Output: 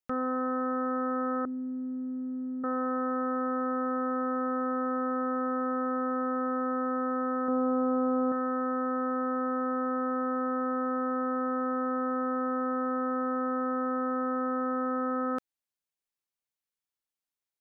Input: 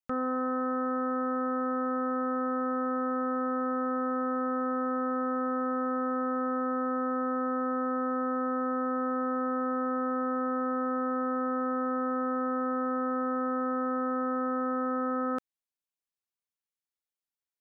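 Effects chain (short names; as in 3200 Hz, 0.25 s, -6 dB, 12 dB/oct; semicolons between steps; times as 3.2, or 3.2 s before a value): 1.45–2.64 vocal tract filter i; 7.47–8.32 doubler 12 ms -2.5 dB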